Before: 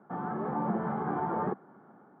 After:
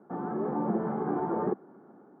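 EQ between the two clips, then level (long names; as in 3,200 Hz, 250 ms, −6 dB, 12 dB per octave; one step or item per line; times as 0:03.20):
parametric band 350 Hz +11.5 dB 1.8 octaves
−5.5 dB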